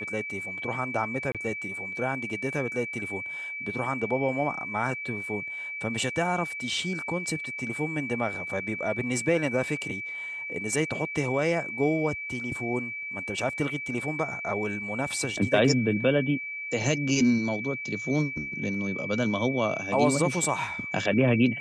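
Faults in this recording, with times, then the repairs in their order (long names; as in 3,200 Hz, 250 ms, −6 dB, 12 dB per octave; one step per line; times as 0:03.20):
whistle 2,300 Hz −33 dBFS
0:01.32–0:01.35: drop-out 27 ms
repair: notch filter 2,300 Hz, Q 30
repair the gap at 0:01.32, 27 ms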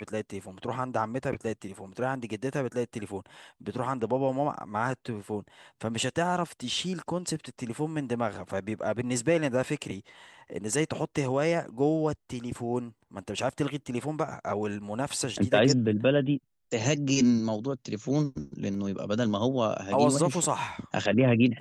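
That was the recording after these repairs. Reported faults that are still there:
none of them is left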